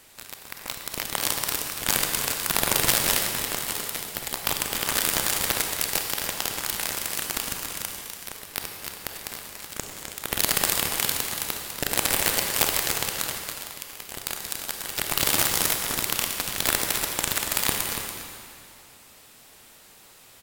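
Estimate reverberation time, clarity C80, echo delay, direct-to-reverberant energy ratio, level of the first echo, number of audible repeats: 2.5 s, 3.5 dB, 0.285 s, 2.0 dB, -9.5 dB, 1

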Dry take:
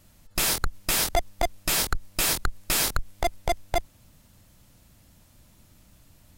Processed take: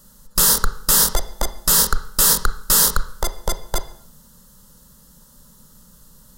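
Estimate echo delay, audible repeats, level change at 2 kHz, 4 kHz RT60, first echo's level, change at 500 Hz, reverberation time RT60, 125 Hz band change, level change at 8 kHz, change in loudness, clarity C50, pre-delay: none, none, +2.0 dB, 0.60 s, none, +0.5 dB, 0.60 s, +5.0 dB, +11.0 dB, +9.5 dB, 13.0 dB, 21 ms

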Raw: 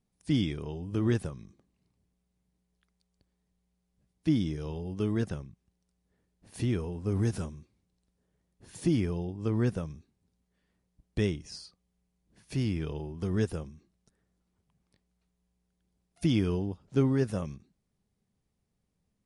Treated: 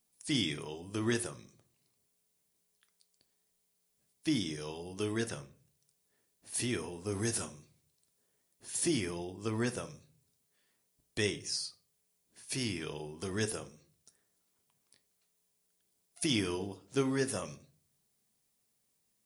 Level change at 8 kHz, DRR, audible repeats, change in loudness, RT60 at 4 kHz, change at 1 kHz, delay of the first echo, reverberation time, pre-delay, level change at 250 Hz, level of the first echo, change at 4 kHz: +12.5 dB, 9.0 dB, none, -4.0 dB, 0.30 s, +1.0 dB, none, 0.40 s, 3 ms, -5.5 dB, none, +6.5 dB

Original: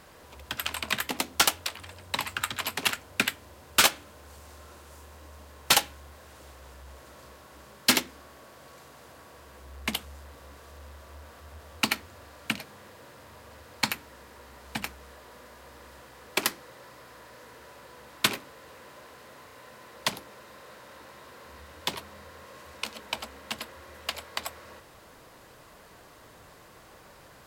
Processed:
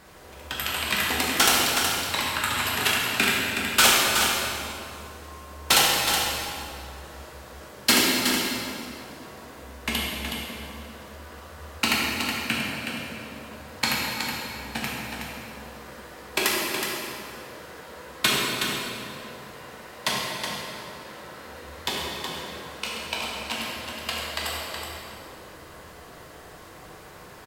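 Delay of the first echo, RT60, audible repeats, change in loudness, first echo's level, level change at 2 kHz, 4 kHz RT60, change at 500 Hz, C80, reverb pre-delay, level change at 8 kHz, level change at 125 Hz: 0.37 s, 2.6 s, 1, +4.5 dB, -6.5 dB, +7.0 dB, 1.9 s, +8.0 dB, -1.0 dB, 7 ms, +6.0 dB, +7.5 dB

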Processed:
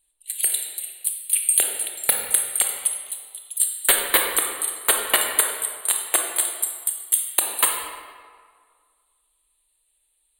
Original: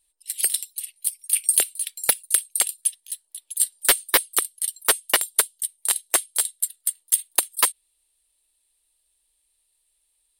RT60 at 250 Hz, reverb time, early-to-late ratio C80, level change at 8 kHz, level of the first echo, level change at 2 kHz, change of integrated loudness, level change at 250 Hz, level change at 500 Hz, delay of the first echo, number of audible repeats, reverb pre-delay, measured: 1.6 s, 1.9 s, 4.5 dB, +1.0 dB, none, +2.0 dB, +1.0 dB, +2.5 dB, +2.5 dB, none, none, 22 ms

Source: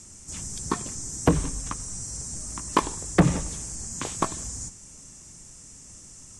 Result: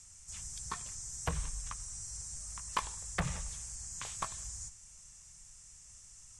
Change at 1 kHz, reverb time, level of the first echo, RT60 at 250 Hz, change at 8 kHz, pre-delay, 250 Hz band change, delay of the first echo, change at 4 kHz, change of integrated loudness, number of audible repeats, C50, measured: -11.5 dB, none, none, none, -8.5 dB, none, -22.0 dB, none, -8.0 dB, -11.5 dB, none, none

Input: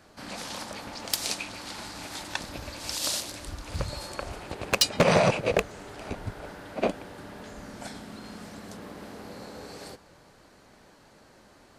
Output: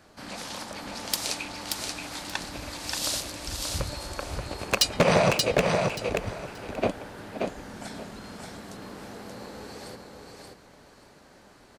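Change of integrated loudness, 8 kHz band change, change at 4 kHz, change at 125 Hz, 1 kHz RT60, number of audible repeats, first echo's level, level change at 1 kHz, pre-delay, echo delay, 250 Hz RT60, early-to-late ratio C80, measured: +1.0 dB, +1.5 dB, +1.5 dB, +1.5 dB, none, 3, -4.0 dB, +1.5 dB, none, 0.58 s, none, none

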